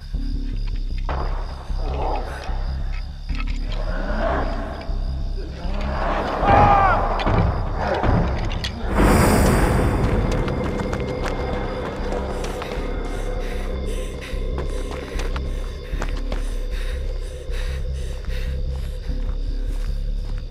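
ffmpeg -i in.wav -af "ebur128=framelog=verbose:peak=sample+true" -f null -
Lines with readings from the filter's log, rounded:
Integrated loudness:
  I:         -24.0 LUFS
  Threshold: -34.0 LUFS
Loudness range:
  LRA:         9.8 LU
  Threshold: -43.6 LUFS
  LRA low:   -29.3 LUFS
  LRA high:  -19.6 LUFS
Sample peak:
  Peak:       -1.7 dBFS
True peak:
  Peak:       -1.7 dBFS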